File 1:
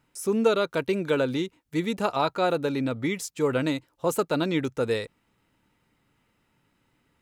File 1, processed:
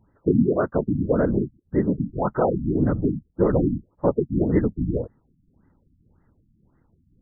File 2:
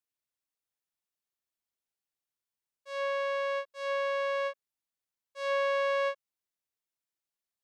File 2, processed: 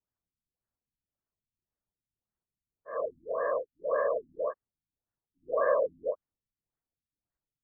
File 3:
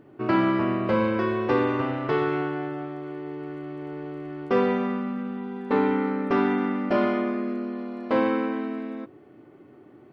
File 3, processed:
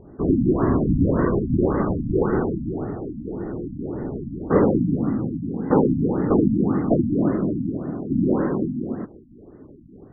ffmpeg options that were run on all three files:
ffmpeg -i in.wav -af "aemphasis=mode=reproduction:type=bsi,afftfilt=real='hypot(re,im)*cos(2*PI*random(0))':imag='hypot(re,im)*sin(2*PI*random(1))':win_size=512:overlap=0.75,afftfilt=real='re*lt(b*sr/1024,290*pow(2100/290,0.5+0.5*sin(2*PI*1.8*pts/sr)))':imag='im*lt(b*sr/1024,290*pow(2100/290,0.5+0.5*sin(2*PI*1.8*pts/sr)))':win_size=1024:overlap=0.75,volume=8dB" out.wav

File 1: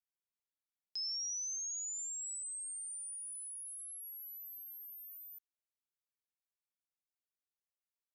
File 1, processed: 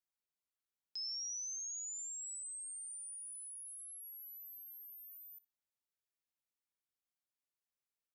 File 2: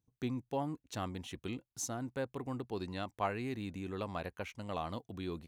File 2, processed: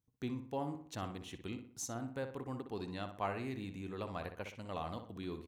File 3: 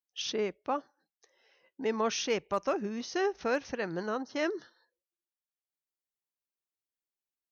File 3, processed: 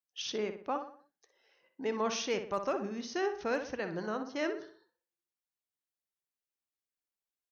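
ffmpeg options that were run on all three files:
ffmpeg -i in.wav -filter_complex "[0:a]asplit=2[link_01][link_02];[link_02]adelay=61,lowpass=frequency=2900:poles=1,volume=-8dB,asplit=2[link_03][link_04];[link_04]adelay=61,lowpass=frequency=2900:poles=1,volume=0.45,asplit=2[link_05][link_06];[link_06]adelay=61,lowpass=frequency=2900:poles=1,volume=0.45,asplit=2[link_07][link_08];[link_08]adelay=61,lowpass=frequency=2900:poles=1,volume=0.45,asplit=2[link_09][link_10];[link_10]adelay=61,lowpass=frequency=2900:poles=1,volume=0.45[link_11];[link_01][link_03][link_05][link_07][link_09][link_11]amix=inputs=6:normalize=0,volume=-3dB" out.wav

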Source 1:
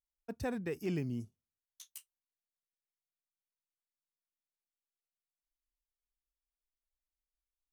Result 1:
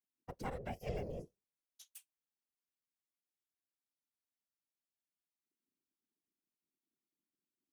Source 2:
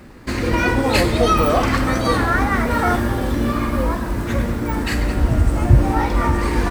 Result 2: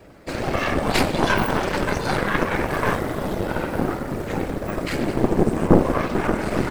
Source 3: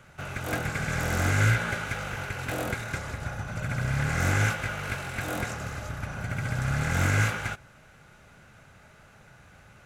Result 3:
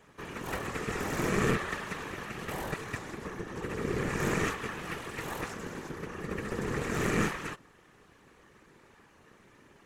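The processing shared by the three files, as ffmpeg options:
ffmpeg -i in.wav -af "aeval=exprs='val(0)*sin(2*PI*280*n/s)':channel_layout=same,afftfilt=real='hypot(re,im)*cos(2*PI*random(0))':imag='hypot(re,im)*sin(2*PI*random(1))':win_size=512:overlap=0.75,aeval=exprs='0.422*(cos(1*acos(clip(val(0)/0.422,-1,1)))-cos(1*PI/2))+0.133*(cos(4*acos(clip(val(0)/0.422,-1,1)))-cos(4*PI/2))':channel_layout=same,volume=3.5dB" out.wav

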